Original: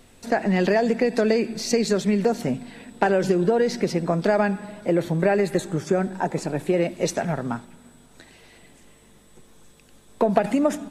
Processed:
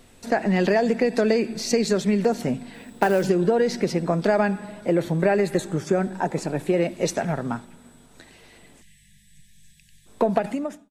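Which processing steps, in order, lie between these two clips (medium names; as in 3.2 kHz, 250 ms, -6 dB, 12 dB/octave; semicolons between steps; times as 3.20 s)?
fade out at the end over 0.70 s; 2.74–3.26 s: companded quantiser 6-bit; 8.82–10.06 s: spectral selection erased 210–1600 Hz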